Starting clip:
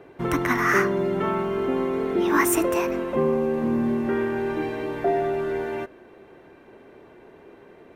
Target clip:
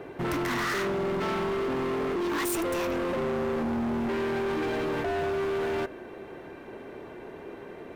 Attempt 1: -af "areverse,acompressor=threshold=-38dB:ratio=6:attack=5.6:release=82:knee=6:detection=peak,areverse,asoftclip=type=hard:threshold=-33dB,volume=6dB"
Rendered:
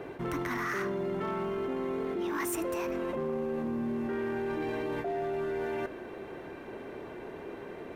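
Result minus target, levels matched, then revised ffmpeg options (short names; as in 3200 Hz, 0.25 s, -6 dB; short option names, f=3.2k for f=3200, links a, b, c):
compressor: peak gain reduction +10 dB
-af "areverse,acompressor=threshold=-26dB:ratio=6:attack=5.6:release=82:knee=6:detection=peak,areverse,asoftclip=type=hard:threshold=-33dB,volume=6dB"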